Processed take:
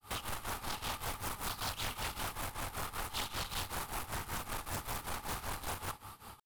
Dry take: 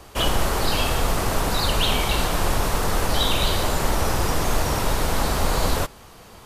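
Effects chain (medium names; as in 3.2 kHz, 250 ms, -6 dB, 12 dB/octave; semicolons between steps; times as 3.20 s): small resonant body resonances 850/1200 Hz, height 14 dB, ringing for 25 ms; peak limiter -17 dBFS, peak gain reduction 12.5 dB; fifteen-band graphic EQ 100 Hz +9 dB, 250 Hz +4 dB, 630 Hz -7 dB, 6.3 kHz -11 dB; hard clipper -26.5 dBFS, distortion -9 dB; pre-emphasis filter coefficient 0.8; reverberation RT60 1.1 s, pre-delay 74 ms, DRR 14 dB; granulator 249 ms, grains 5.2 per s, pitch spread up and down by 0 st; loudspeaker Doppler distortion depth 0.97 ms; trim +4 dB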